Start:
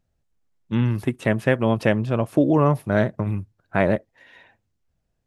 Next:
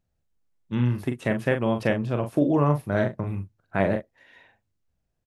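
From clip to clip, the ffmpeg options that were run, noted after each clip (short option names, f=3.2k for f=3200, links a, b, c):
-filter_complex "[0:a]asplit=2[a][b];[b]adelay=41,volume=-7dB[c];[a][c]amix=inputs=2:normalize=0,volume=-4.5dB"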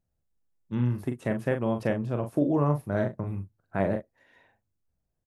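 -af "equalizer=f=3k:t=o:w=1.8:g=-7,volume=-3dB"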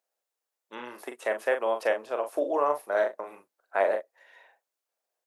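-af "highpass=f=500:w=0.5412,highpass=f=500:w=1.3066,volume=5.5dB"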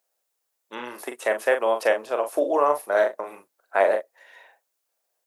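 -af "highshelf=f=5.9k:g=6,volume=5dB"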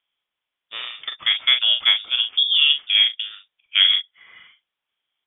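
-af "lowpass=f=3.3k:t=q:w=0.5098,lowpass=f=3.3k:t=q:w=0.6013,lowpass=f=3.3k:t=q:w=0.9,lowpass=f=3.3k:t=q:w=2.563,afreqshift=-3900,volume=3.5dB"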